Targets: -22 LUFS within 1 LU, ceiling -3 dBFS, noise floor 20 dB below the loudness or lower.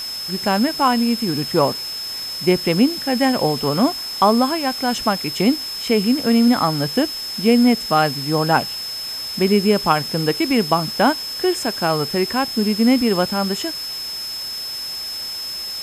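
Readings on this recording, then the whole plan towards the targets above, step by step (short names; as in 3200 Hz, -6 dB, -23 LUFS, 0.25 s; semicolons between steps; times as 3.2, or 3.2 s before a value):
steady tone 5200 Hz; tone level -26 dBFS; noise floor -29 dBFS; noise floor target -39 dBFS; loudness -19.0 LUFS; peak -2.5 dBFS; loudness target -22.0 LUFS
-> notch 5200 Hz, Q 30; denoiser 10 dB, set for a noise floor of -29 dBFS; gain -3 dB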